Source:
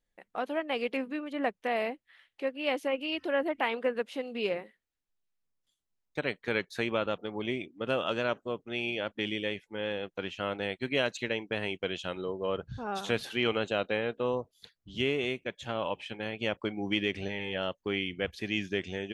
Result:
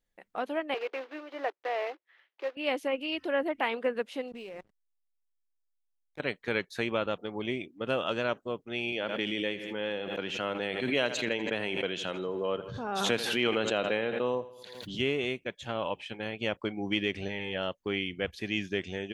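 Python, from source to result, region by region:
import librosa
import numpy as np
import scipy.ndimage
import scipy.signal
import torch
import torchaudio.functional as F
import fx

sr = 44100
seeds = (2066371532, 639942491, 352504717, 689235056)

y = fx.chain(x, sr, fx.block_float(bits=3),
    fx.ellip_highpass(hz=340.0, order=4, stop_db=50),
    fx.air_absorb(metres=280.0), at=(0.74, 2.57))
y = fx.chain(y, sr, fx.level_steps(step_db=21),
    fx.backlash(play_db=-52.5), at=(4.28, 6.2))
y = fx.chain(y, sr, fx.highpass(hz=140.0, slope=12),
    fx.echo_feedback(ms=82, feedback_pct=52, wet_db=-17),
    fx.pre_swell(db_per_s=37.0), at=(8.92, 14.99))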